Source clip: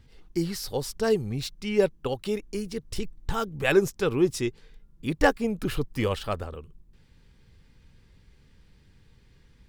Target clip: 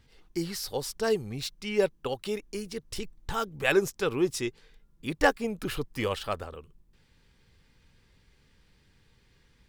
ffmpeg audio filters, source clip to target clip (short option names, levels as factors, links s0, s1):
-af "lowshelf=f=350:g=-7.5"